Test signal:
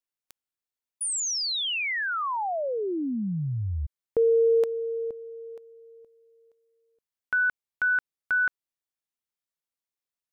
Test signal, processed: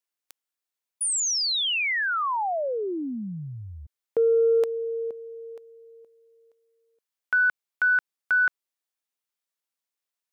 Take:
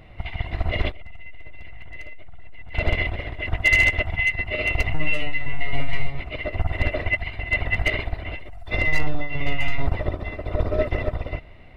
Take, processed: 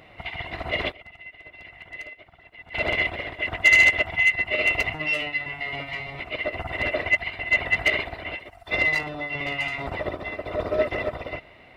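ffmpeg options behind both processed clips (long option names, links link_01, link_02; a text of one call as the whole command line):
ffmpeg -i in.wav -af "acontrast=58,highpass=frequency=410:poles=1,volume=-3dB" out.wav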